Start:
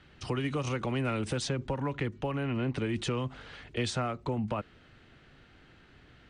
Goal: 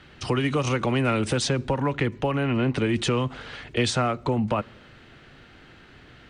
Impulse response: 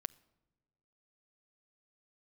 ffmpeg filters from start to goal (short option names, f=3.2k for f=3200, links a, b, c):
-filter_complex "[0:a]asplit=2[a][b];[1:a]atrim=start_sample=2205,asetrate=34398,aresample=44100,lowshelf=f=110:g=-10.5[c];[b][c]afir=irnorm=-1:irlink=0,volume=1dB[d];[a][d]amix=inputs=2:normalize=0,volume=3dB"